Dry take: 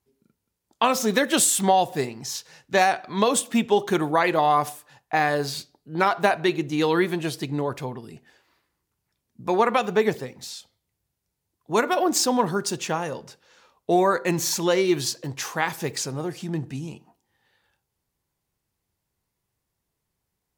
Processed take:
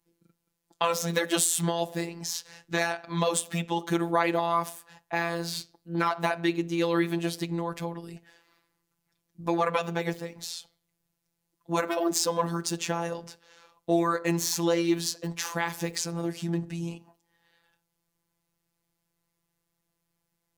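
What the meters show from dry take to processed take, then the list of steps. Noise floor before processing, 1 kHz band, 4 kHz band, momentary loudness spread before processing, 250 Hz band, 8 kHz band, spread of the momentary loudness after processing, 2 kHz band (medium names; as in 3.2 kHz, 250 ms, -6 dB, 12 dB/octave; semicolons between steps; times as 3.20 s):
-81 dBFS, -7.5 dB, -4.0 dB, 14 LU, -3.5 dB, -4.5 dB, 11 LU, -5.5 dB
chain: in parallel at +3 dB: compression, threshold -30 dBFS, peak gain reduction 15 dB; on the sum: robot voice 169 Hz; trim -5.5 dB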